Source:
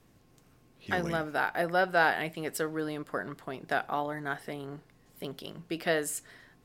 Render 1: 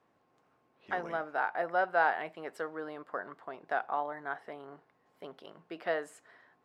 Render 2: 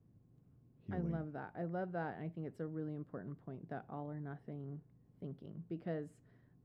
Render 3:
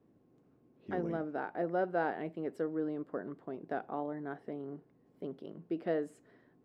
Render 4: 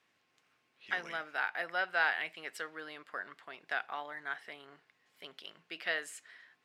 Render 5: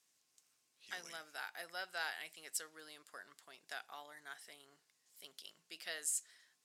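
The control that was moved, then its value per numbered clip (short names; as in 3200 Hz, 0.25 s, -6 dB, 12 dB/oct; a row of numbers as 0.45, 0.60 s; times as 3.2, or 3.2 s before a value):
band-pass, frequency: 910, 120, 320, 2300, 7300 Hz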